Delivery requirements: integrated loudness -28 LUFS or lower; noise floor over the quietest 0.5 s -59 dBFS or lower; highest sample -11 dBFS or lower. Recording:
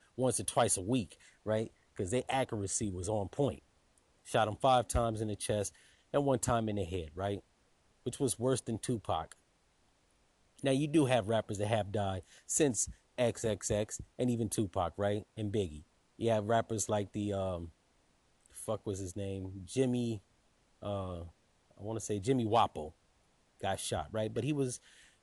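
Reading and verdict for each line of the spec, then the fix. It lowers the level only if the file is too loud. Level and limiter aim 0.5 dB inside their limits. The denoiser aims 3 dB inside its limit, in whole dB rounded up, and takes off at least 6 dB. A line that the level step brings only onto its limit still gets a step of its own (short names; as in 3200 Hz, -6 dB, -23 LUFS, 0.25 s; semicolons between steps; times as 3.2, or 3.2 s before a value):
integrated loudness -34.5 LUFS: OK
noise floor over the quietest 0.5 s -71 dBFS: OK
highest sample -17.0 dBFS: OK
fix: none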